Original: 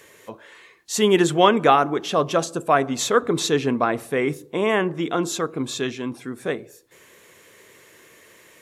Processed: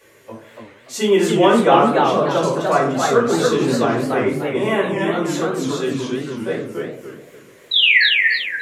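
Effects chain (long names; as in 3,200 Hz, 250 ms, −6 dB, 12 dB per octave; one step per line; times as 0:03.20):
0:04.48–0:05.27: high-shelf EQ 6,600 Hz +10 dB
0:07.71–0:08.04: sound drawn into the spectrogram fall 1,600–4,000 Hz −12 dBFS
convolution reverb RT60 0.55 s, pre-delay 3 ms, DRR −6 dB
feedback echo with a swinging delay time 290 ms, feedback 34%, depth 205 cents, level −3 dB
level −9 dB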